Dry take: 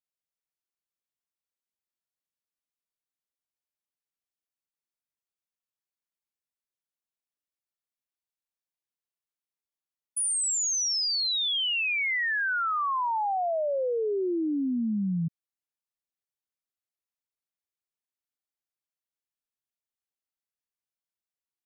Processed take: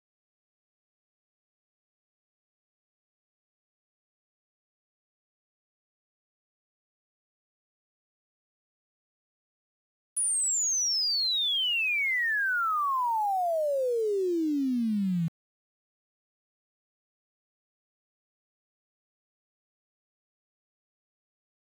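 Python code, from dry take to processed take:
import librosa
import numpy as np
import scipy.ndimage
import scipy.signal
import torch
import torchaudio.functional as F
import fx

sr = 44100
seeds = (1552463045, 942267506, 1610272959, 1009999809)

y = np.where(np.abs(x) >= 10.0 ** (-41.5 / 20.0), x, 0.0)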